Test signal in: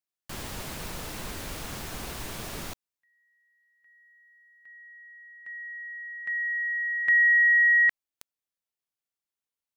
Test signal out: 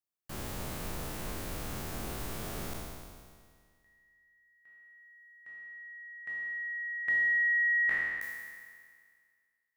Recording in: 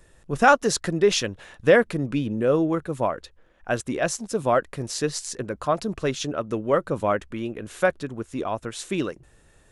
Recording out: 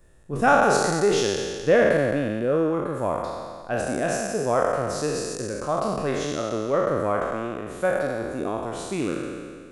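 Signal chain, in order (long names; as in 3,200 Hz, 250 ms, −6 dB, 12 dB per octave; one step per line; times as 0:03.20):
peak hold with a decay on every bin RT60 1.91 s
parametric band 3,800 Hz −6 dB 3 octaves
notch filter 970 Hz, Q 26
level −3.5 dB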